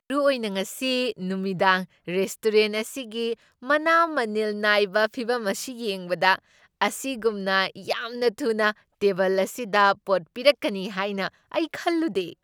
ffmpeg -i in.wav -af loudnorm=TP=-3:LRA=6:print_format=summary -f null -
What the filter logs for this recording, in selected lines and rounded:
Input Integrated:    -24.4 LUFS
Input True Peak:      -3.0 dBTP
Input LRA:             1.5 LU
Input Threshold:     -34.4 LUFS